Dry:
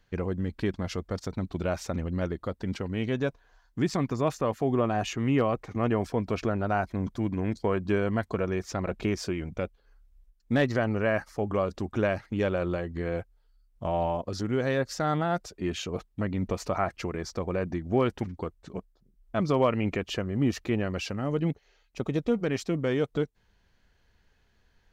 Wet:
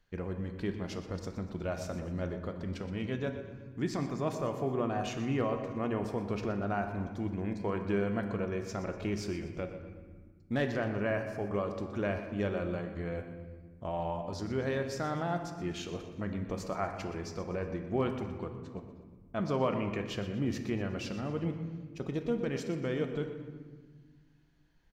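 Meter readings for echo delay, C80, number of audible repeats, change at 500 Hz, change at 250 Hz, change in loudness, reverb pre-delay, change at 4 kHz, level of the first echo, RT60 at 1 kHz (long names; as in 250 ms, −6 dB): 121 ms, 8.0 dB, 3, −5.5 dB, −5.5 dB, −5.5 dB, 3 ms, −6.0 dB, −13.5 dB, 1.3 s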